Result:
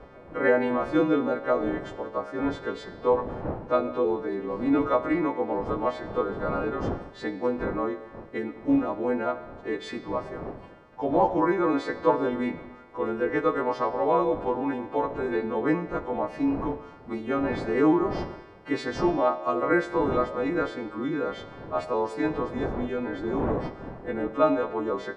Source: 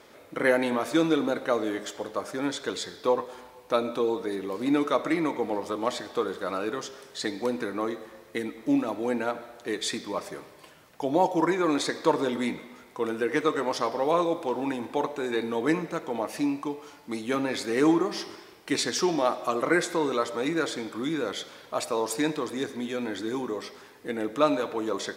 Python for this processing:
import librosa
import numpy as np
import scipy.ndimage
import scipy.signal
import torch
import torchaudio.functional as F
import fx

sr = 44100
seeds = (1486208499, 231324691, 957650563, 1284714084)

y = fx.freq_snap(x, sr, grid_st=2)
y = fx.dmg_wind(y, sr, seeds[0], corner_hz=540.0, level_db=-41.0)
y = scipy.signal.sosfilt(scipy.signal.butter(2, 1300.0, 'lowpass', fs=sr, output='sos'), y)
y = F.gain(torch.from_numpy(y), 2.0).numpy()